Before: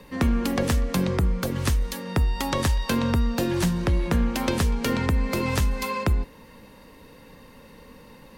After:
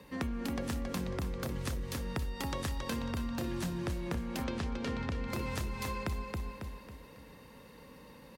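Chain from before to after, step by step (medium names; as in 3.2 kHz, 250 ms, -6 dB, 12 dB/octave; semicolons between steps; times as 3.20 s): high-pass 44 Hz; feedback delay 274 ms, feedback 39%, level -5.5 dB; compression 3:1, threshold -28 dBFS, peak gain reduction 9.5 dB; 4.44–5.28 s: low-pass 5.3 kHz 12 dB/octave; trim -6.5 dB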